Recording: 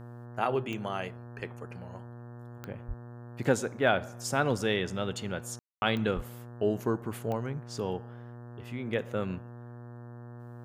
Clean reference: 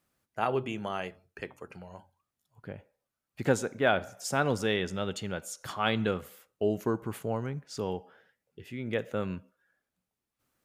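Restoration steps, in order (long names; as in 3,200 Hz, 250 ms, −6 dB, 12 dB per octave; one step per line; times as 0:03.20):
click removal
hum removal 119.9 Hz, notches 15
0:02.87–0:02.99: high-pass filter 140 Hz 24 dB per octave
0:06.15–0:06.27: high-pass filter 140 Hz 24 dB per octave
ambience match 0:05.59–0:05.82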